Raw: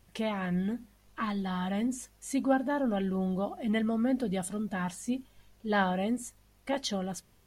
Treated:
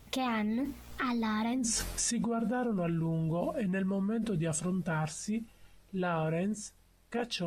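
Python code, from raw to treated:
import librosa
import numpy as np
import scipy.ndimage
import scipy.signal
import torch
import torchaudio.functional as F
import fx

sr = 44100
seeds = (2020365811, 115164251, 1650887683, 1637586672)

y = fx.doppler_pass(x, sr, speed_mps=53, closest_m=3.0, pass_at_s=1.6)
y = fx.env_flatten(y, sr, amount_pct=100)
y = F.gain(torch.from_numpy(y), -3.0).numpy()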